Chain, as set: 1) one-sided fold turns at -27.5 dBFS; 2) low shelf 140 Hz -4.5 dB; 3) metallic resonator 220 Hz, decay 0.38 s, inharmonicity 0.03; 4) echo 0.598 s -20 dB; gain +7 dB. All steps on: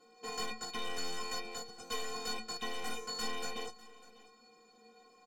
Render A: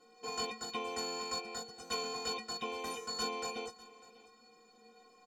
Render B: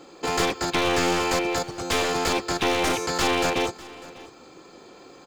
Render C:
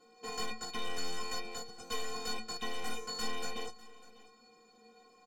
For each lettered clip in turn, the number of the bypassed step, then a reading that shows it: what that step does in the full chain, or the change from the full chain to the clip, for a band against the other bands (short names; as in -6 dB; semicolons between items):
1, distortion -3 dB; 3, 125 Hz band +6.5 dB; 2, 125 Hz band +3.0 dB